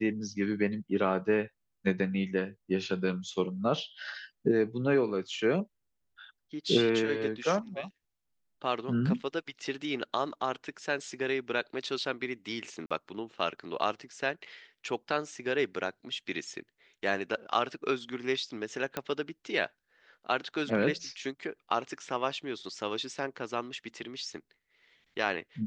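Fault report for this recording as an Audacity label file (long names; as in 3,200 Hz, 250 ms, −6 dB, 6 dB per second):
12.860000	12.910000	drop-out 46 ms
18.970000	18.970000	click −16 dBFS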